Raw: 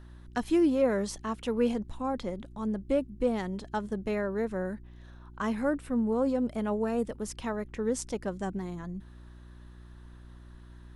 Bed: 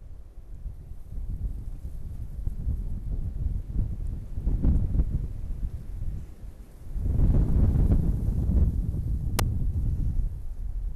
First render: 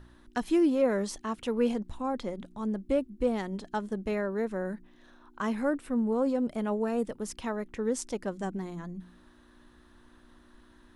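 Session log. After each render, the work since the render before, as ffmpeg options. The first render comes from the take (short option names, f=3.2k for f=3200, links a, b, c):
-af "bandreject=f=60:t=h:w=4,bandreject=f=120:t=h:w=4,bandreject=f=180:t=h:w=4"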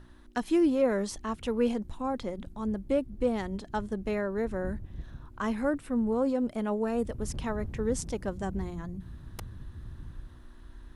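-filter_complex "[1:a]volume=-16dB[a];[0:a][a]amix=inputs=2:normalize=0"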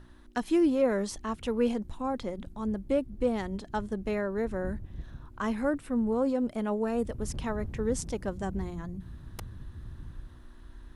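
-af anull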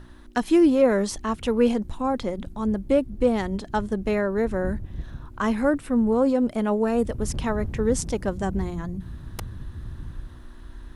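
-af "volume=7dB"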